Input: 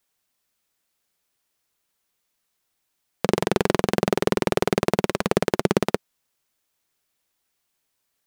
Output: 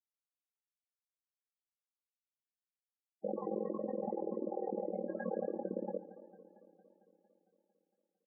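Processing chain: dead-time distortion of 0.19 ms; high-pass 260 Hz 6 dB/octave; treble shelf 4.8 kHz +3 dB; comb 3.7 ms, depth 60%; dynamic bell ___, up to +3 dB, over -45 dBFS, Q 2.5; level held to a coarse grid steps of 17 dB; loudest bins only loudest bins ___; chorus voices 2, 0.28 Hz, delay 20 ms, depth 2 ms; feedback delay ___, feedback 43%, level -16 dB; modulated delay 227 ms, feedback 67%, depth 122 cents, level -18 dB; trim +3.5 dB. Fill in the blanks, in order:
2 kHz, 16, 144 ms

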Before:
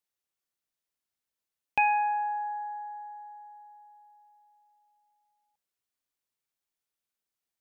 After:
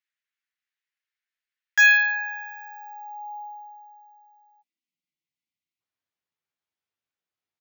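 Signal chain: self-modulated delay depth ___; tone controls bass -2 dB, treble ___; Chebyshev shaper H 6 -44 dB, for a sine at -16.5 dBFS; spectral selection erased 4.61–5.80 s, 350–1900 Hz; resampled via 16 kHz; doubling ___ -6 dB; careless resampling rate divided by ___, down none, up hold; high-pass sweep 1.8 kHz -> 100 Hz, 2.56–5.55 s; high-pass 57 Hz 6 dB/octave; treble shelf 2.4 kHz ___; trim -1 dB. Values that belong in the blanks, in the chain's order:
0.47 ms, -12 dB, 12 ms, 2×, +5 dB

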